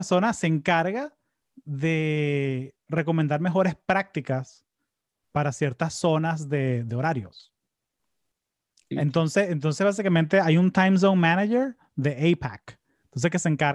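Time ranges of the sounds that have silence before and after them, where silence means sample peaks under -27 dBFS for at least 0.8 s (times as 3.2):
5.36–7.2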